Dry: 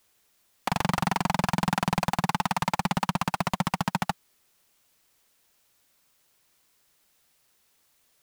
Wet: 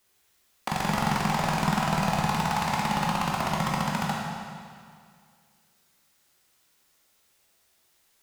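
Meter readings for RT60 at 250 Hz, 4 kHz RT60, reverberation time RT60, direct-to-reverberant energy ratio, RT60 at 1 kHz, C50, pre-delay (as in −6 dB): 2.1 s, 1.9 s, 2.1 s, −3.5 dB, 2.1 s, −0.5 dB, 13 ms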